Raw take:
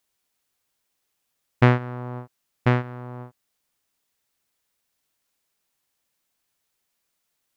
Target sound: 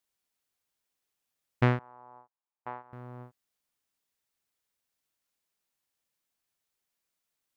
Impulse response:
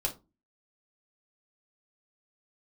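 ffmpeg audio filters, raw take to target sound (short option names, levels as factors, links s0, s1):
-filter_complex "[0:a]asettb=1/sr,asplit=3[s0][s1][s2];[s0]atrim=end=1.794[s3];[s1]atrim=start=1.79:end=2.93,asetpts=PTS-STARTPTS,afade=t=in:d=0.004:c=qsin,afade=t=out:st=1.136:d=0.004:c=qsin,bandpass=f=900:t=q:w=3.3:csg=0[s4];[s2]atrim=start=2.926[s5];[s3][s4]acrossfade=d=0.004:c1=hsin:c2=qsin[s6];[s6][s5]acrossfade=d=0.004:c1=qsin:c2=hsin,volume=0.398"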